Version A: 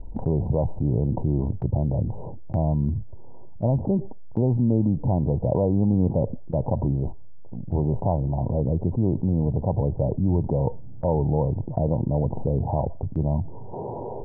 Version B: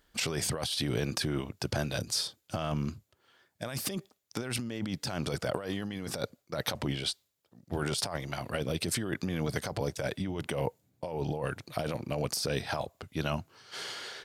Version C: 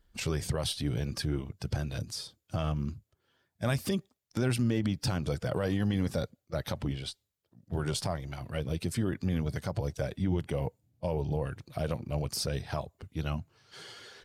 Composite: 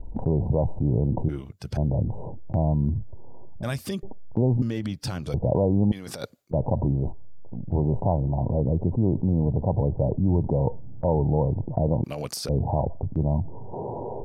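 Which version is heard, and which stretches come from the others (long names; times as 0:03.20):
A
0:01.29–0:01.77: punch in from C
0:03.63–0:04.03: punch in from C
0:04.62–0:05.34: punch in from C
0:05.92–0:06.51: punch in from B
0:12.04–0:12.49: punch in from B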